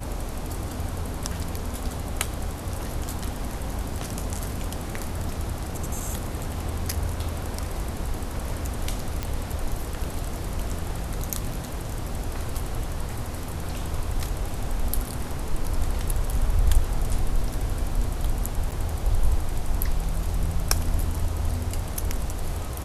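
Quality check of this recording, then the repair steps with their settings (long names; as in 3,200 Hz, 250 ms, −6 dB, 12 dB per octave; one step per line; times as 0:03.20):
0:09.23: click −13 dBFS
0:18.71–0:18.72: drop-out 8.9 ms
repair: click removal
repair the gap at 0:18.71, 8.9 ms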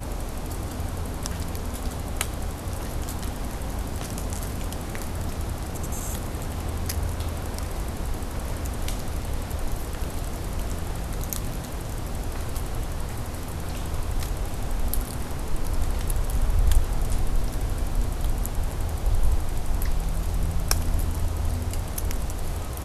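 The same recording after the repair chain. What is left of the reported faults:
none of them is left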